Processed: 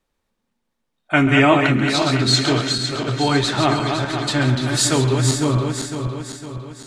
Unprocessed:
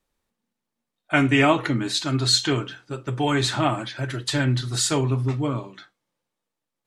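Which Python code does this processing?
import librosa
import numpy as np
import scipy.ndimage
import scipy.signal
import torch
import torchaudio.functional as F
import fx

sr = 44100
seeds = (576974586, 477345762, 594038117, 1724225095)

y = fx.reverse_delay_fb(x, sr, ms=253, feedback_pct=69, wet_db=-5.5)
y = fx.high_shelf(y, sr, hz=7200.0, db=fx.steps((0.0, -7.0), (4.61, 2.0)))
y = y + 10.0 ** (-13.0 / 20.0) * np.pad(y, (int(136 * sr / 1000.0), 0))[:len(y)]
y = y * 10.0 ** (3.5 / 20.0)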